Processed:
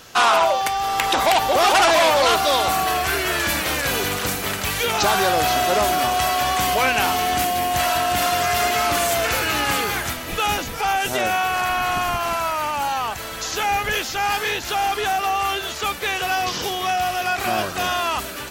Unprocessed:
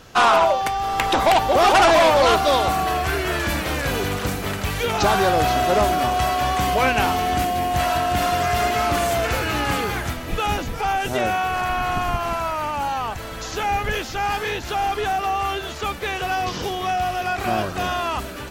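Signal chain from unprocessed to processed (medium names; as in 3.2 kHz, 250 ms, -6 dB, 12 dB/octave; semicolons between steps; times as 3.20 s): tilt EQ +2 dB/octave; in parallel at 0 dB: peak limiter -13 dBFS, peak gain reduction 9 dB; on the sum: trim -4.5 dB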